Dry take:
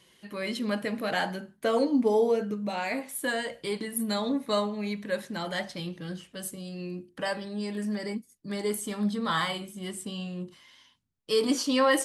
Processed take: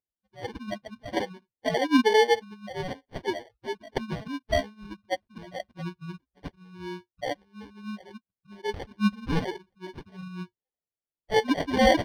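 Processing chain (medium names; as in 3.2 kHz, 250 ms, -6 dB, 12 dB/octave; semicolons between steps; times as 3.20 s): expander on every frequency bin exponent 3; sample-rate reducer 1.3 kHz, jitter 0%; Savitzky-Golay filter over 15 samples; trim +7 dB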